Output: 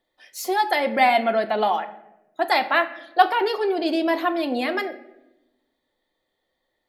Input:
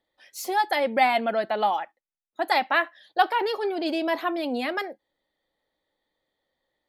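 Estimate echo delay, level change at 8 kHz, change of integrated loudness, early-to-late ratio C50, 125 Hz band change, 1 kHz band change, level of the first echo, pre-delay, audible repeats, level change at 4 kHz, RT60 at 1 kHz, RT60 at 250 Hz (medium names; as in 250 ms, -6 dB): no echo, no reading, +3.0 dB, 14.0 dB, no reading, +3.0 dB, no echo, 3 ms, no echo, +3.0 dB, 0.80 s, 1.4 s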